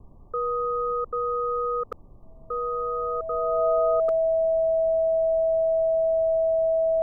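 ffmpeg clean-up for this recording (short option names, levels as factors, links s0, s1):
-af "bandreject=f=650:w=30,afftdn=nr=26:nf=-45"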